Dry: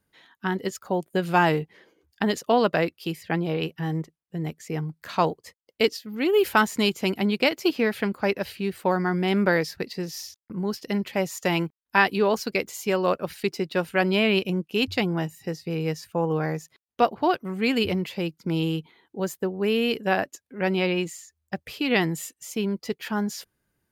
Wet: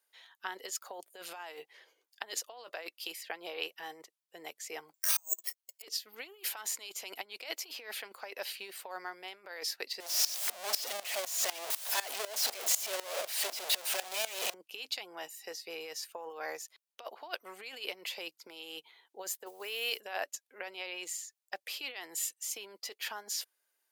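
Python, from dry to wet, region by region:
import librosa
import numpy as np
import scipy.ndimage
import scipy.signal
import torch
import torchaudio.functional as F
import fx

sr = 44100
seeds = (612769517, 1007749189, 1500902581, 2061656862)

y = fx.chain(x, sr, fx.bass_treble(bass_db=-10, treble_db=4),
    fx.comb(ms=3.2, depth=0.89),
    fx.resample_bad(factor=6, down='filtered', up='zero_stuff'), at=(4.94, 5.82))
y = fx.chain(y, sr, fx.clip_1bit(),
    fx.peak_eq(hz=630.0, db=8.0, octaves=0.48),
    fx.tremolo_decay(direction='swelling', hz=4.0, depth_db=19), at=(10.0, 14.54))
y = fx.chain(y, sr, fx.block_float(bits=7),
    fx.highpass(hz=340.0, slope=6),
    fx.high_shelf(hz=8100.0, db=6.5), at=(19.46, 20.01))
y = fx.peak_eq(y, sr, hz=1400.0, db=-6.5, octaves=1.8)
y = fx.over_compress(y, sr, threshold_db=-28.0, ratio=-0.5)
y = scipy.signal.sosfilt(scipy.signal.bessel(4, 880.0, 'highpass', norm='mag', fs=sr, output='sos'), y)
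y = y * 10.0 ** (-1.5 / 20.0)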